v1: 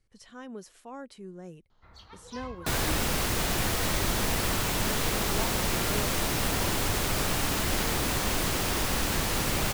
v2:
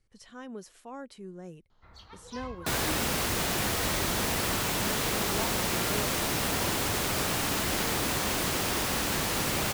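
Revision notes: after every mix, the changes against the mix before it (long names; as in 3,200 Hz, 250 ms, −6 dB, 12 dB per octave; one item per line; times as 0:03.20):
second sound: add high-pass filter 110 Hz 6 dB per octave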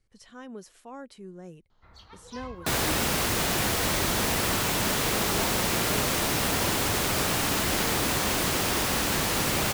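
second sound +3.0 dB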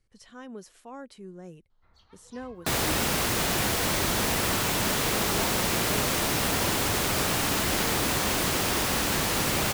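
first sound −10.0 dB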